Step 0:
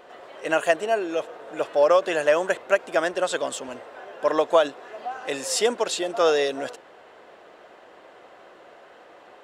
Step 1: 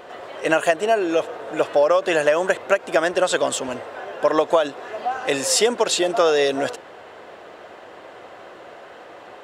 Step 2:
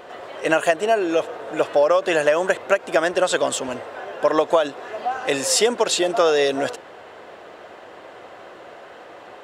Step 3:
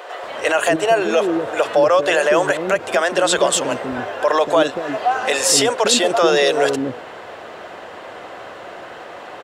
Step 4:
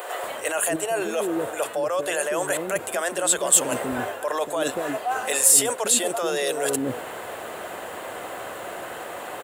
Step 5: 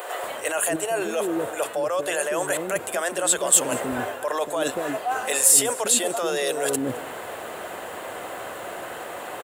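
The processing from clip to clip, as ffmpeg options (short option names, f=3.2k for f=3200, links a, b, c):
-af "equalizer=f=100:t=o:w=0.91:g=6.5,acompressor=threshold=-21dB:ratio=6,volume=7.5dB"
-af anull
-filter_complex "[0:a]alimiter=limit=-12dB:level=0:latency=1:release=34,acrossover=split=400[a][b];[a]adelay=240[c];[c][b]amix=inputs=2:normalize=0,volume=7.5dB"
-af "areverse,acompressor=threshold=-23dB:ratio=6,areverse,aexciter=amount=6.4:drive=7.6:freq=7.7k"
-af "aecho=1:1:213:0.075"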